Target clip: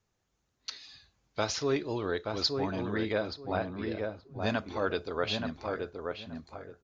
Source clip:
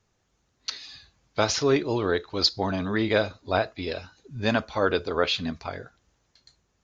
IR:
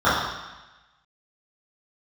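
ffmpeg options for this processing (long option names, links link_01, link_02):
-filter_complex "[0:a]asettb=1/sr,asplit=3[link_01][link_02][link_03];[link_01]atrim=end=3.124[link_04];[link_02]atrim=start=3.12:end=4.4,asetpts=PTS-STARTPTS,afade=type=in:duration=0.004:curve=qsin,afade=type=out:start_time=1.276:duration=0.004:curve=qsin,lowpass=frequency=2000:poles=1[link_05];[link_03]atrim=start=4.396[link_06];[link_04][link_05]acrossfade=duration=0.004:curve1=hsin:curve2=qsin[link_07];[link_07][link_06]acrossfade=duration=0.004:curve1=qsin:curve2=hsin,asplit=2[link_08][link_09];[link_09]adelay=876,lowpass=frequency=1400:poles=1,volume=-3.5dB,asplit=2[link_10][link_11];[link_11]adelay=876,lowpass=frequency=1400:poles=1,volume=0.22,asplit=2[link_12][link_13];[link_13]adelay=876,lowpass=frequency=1400:poles=1,volume=0.22[link_14];[link_08][link_10][link_12][link_14]amix=inputs=4:normalize=0,volume=-7.5dB"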